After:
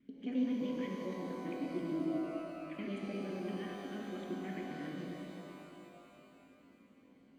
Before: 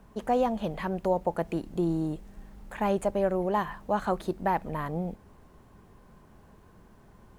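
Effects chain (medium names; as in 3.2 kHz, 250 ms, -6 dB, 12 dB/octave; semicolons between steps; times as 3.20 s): time reversed locally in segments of 87 ms; vowel filter i; pitch-shifted reverb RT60 3.1 s, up +12 st, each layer -8 dB, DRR -1 dB; trim +1 dB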